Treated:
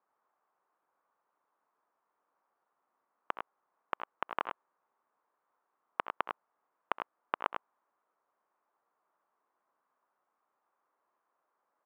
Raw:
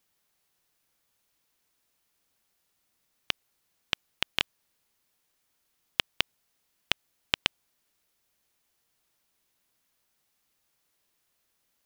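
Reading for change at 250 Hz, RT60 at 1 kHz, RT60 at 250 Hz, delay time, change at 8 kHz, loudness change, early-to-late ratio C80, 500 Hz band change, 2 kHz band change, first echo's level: −5.0 dB, no reverb audible, no reverb audible, 68 ms, below −30 dB, −7.5 dB, no reverb audible, +2.0 dB, −8.5 dB, −19.0 dB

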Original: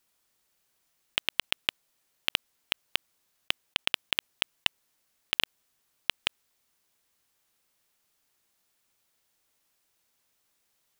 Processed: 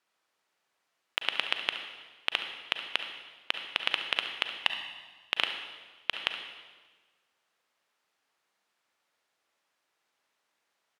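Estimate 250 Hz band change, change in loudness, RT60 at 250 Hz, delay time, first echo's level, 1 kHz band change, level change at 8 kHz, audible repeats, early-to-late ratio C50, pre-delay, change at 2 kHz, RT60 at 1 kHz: −3.5 dB, −1.0 dB, 1.5 s, 70 ms, −14.0 dB, +3.5 dB, −9.5 dB, 1, 6.0 dB, 34 ms, +1.0 dB, 1.3 s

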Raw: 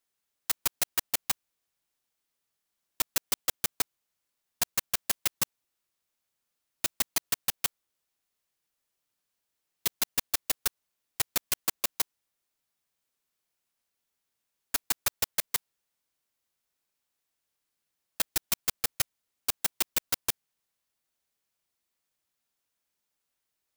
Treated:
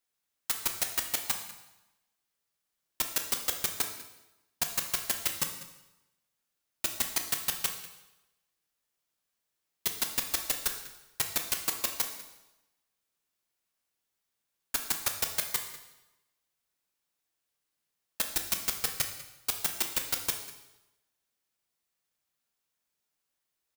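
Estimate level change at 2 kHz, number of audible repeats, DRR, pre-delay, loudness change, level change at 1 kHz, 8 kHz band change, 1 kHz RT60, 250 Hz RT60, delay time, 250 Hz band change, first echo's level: −0.5 dB, 1, 4.0 dB, 4 ms, −1.0 dB, −0.5 dB, −0.5 dB, 1.0 s, 0.95 s, 195 ms, −0.5 dB, −17.5 dB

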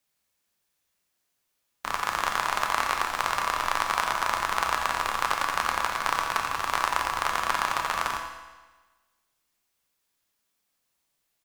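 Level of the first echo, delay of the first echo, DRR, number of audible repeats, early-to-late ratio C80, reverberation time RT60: −11.0 dB, 87 ms, 1.5 dB, 1, 5.5 dB, 1.3 s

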